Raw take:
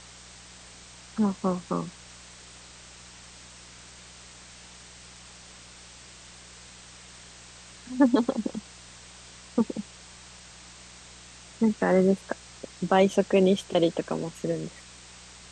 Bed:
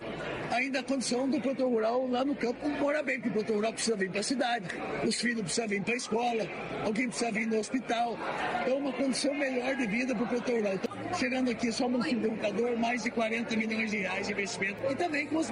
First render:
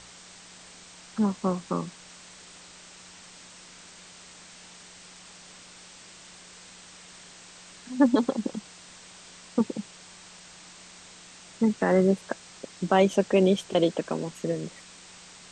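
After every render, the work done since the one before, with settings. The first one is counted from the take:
hum removal 60 Hz, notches 2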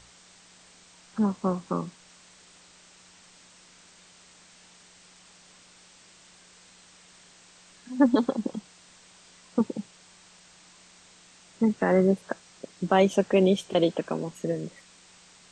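noise reduction from a noise print 6 dB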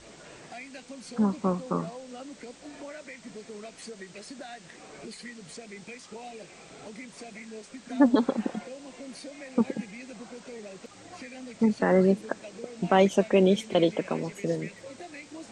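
mix in bed −13 dB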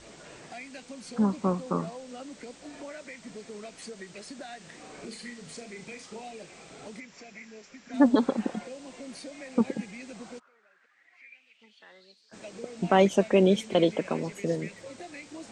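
0:04.57–0:06.21: flutter between parallel walls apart 6.5 metres, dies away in 0.29 s
0:07.00–0:07.94: Chebyshev low-pass with heavy ripple 7,500 Hz, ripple 6 dB
0:10.38–0:12.32: resonant band-pass 1,200 Hz → 4,800 Hz, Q 7.8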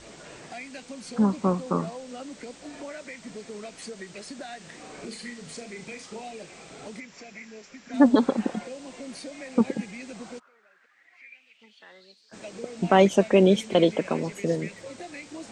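level +3 dB

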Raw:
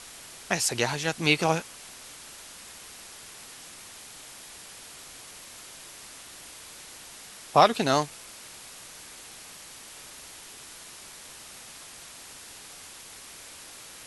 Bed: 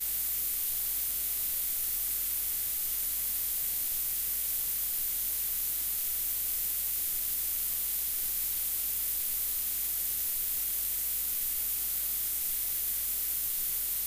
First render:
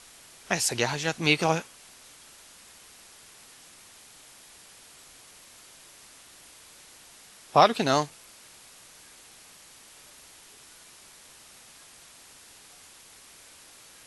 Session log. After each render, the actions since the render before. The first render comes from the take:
noise reduction from a noise print 6 dB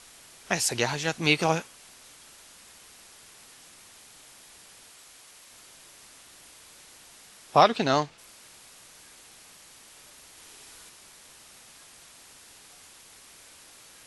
0:04.90–0:05.51: low-shelf EQ 370 Hz −7 dB
0:07.62–0:08.17: low-pass filter 7,400 Hz → 4,300 Hz
0:10.31–0:10.89: flutter between parallel walls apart 10.5 metres, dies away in 1 s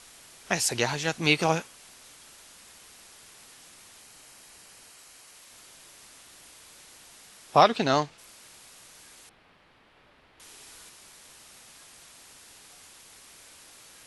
0:04.02–0:05.33: notch filter 3,500 Hz
0:09.29–0:10.40: high-frequency loss of the air 410 metres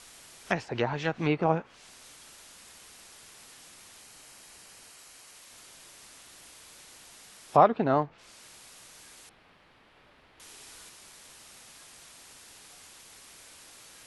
treble cut that deepens with the level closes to 1,200 Hz, closed at −22.5 dBFS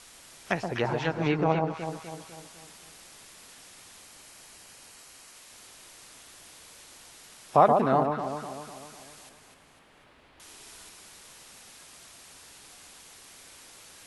delay that swaps between a low-pass and a high-pass 125 ms, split 1,100 Hz, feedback 69%, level −4 dB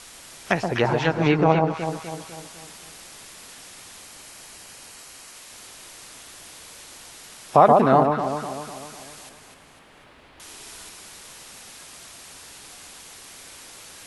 level +7 dB
brickwall limiter −3 dBFS, peak gain reduction 3 dB

